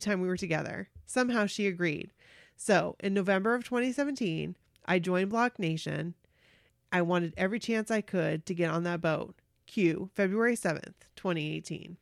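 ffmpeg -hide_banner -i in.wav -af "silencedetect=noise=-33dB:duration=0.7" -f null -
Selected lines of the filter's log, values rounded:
silence_start: 6.09
silence_end: 6.93 | silence_duration: 0.83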